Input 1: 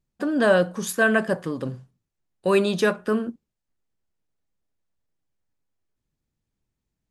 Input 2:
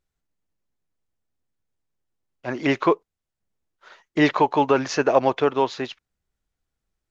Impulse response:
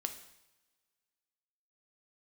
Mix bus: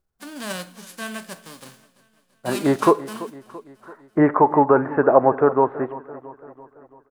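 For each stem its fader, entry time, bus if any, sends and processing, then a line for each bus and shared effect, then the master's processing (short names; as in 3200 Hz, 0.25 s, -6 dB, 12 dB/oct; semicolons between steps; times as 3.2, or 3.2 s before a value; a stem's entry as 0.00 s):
-16.0 dB, 0.00 s, send -5.5 dB, echo send -17.5 dB, spectral whitening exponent 0.3; HPF 170 Hz
0.0 dB, 0.00 s, send -5.5 dB, echo send -14 dB, steep low-pass 1600 Hz 36 dB/oct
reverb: on, pre-delay 3 ms
echo: feedback echo 0.336 s, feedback 54%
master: dry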